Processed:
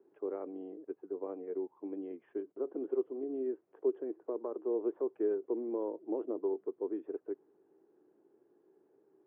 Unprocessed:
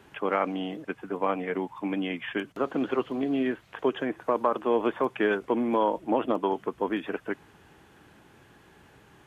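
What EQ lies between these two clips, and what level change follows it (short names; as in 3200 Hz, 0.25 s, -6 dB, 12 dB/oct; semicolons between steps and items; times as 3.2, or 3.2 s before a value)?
ladder band-pass 430 Hz, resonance 65%; bell 310 Hz +3.5 dB 0.39 oct; low shelf 400 Hz +7.5 dB; -7.0 dB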